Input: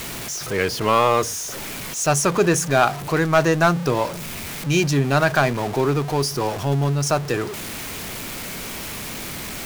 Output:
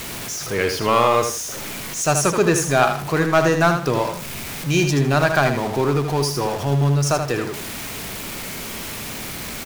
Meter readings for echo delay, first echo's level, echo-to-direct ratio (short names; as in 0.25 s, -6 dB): 78 ms, -7.0 dB, -6.5 dB